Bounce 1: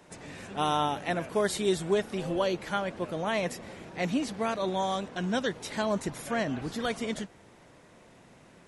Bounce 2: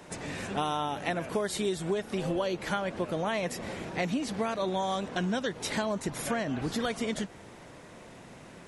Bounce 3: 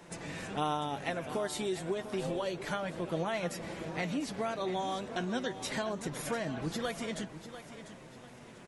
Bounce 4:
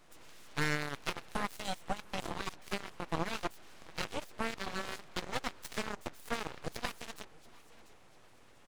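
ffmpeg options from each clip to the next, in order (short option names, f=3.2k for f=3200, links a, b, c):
-af "acompressor=threshold=-34dB:ratio=6,volume=6.5dB"
-af "flanger=delay=5.9:depth=2.3:regen=49:speed=0.29:shape=sinusoidal,aecho=1:1:695|1390|2085|2780:0.237|0.083|0.029|0.0102"
-af "aeval=exprs='0.112*(cos(1*acos(clip(val(0)/0.112,-1,1)))-cos(1*PI/2))+0.0224*(cos(7*acos(clip(val(0)/0.112,-1,1)))-cos(7*PI/2))':c=same,aeval=exprs='abs(val(0))':c=same,volume=1.5dB"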